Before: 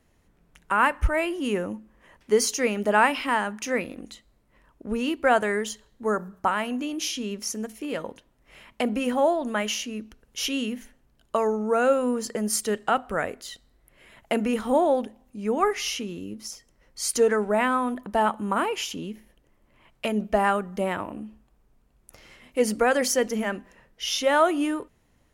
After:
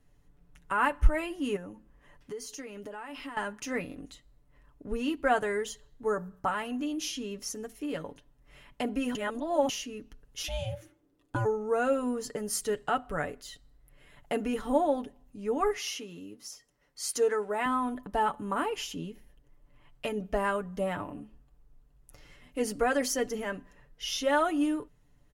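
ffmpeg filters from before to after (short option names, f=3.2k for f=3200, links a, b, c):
-filter_complex "[0:a]asettb=1/sr,asplit=3[a][b][c];[a]atrim=end=1.564[d];[b]atrim=start=1.56:end=3.37,asetpts=PTS-STARTPTS,afade=t=in:d=0.004:c=qsin,afade=t=out:st=1.806:d=0.004:c=qsin,acompressor=threshold=-33dB:ratio=6:attack=3.2:release=140:knee=1:detection=peak[e];[c]atrim=start=3.366[f];[d][e]acrossfade=d=0.004:c1=hsin:c2=qsin[g];[g][f]acrossfade=d=0.004:c1=qsin:c2=hsin,asplit=3[h][i][j];[h]afade=t=out:st=10.42:d=0.02[k];[i]aeval=exprs='val(0)*sin(2*PI*330*n/s)':c=same,afade=t=in:st=10.42:d=0.02,afade=t=out:st=11.44:d=0.02[l];[j]afade=t=in:st=11.44:d=0.02[m];[k][l][m]amix=inputs=3:normalize=0,asettb=1/sr,asplit=3[n][o][p];[n]atrim=end=15.774[q];[o]atrim=start=15.77:end=17.66,asetpts=PTS-STARTPTS,afade=t=in:d=0.004:c=qsin,afade=t=out:st=1.886:d=0.004:c=qsin,highpass=f=380:p=1[r];[p]atrim=start=17.656[s];[q][r]acrossfade=d=0.004:c1=hsin:c2=qsin[t];[t][s]acrossfade=d=0.004:c1=qsin:c2=hsin,asplit=3[u][v][w];[u]atrim=end=9.152[x];[v]atrim=start=9.148:end=9.692,asetpts=PTS-STARTPTS,areverse[y];[w]atrim=start=9.688[z];[x][y]acrossfade=d=0.004:c1=hsin:c2=hsin[aa];[aa][z]acrossfade=d=0.004:c1=hsin:c2=hsin,lowshelf=f=130:g=11.5,bandreject=f=2.3k:w=19,aecho=1:1:6.9:0.6,volume=-7.5dB"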